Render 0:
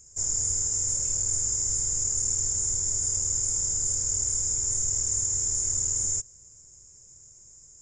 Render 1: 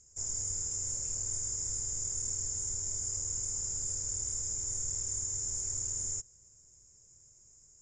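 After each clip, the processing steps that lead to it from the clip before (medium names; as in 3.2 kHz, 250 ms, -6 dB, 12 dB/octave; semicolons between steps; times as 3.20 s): low-pass 8.2 kHz 12 dB/octave; trim -7 dB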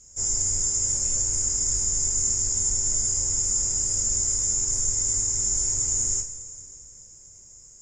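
two-slope reverb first 0.31 s, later 2.9 s, from -18 dB, DRR -2 dB; trim +7.5 dB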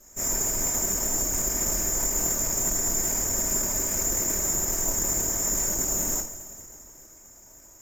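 comb filter that takes the minimum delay 3.3 ms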